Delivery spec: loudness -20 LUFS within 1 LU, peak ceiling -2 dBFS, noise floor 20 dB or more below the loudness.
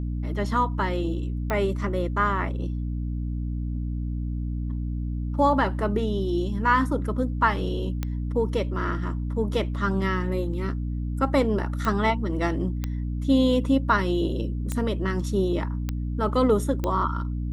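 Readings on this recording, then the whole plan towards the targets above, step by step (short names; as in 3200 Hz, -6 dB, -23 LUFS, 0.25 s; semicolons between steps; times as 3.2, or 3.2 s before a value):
clicks 7; hum 60 Hz; harmonics up to 300 Hz; hum level -26 dBFS; loudness -26.0 LUFS; peak -8.5 dBFS; loudness target -20.0 LUFS
-> de-click; notches 60/120/180/240/300 Hz; gain +6 dB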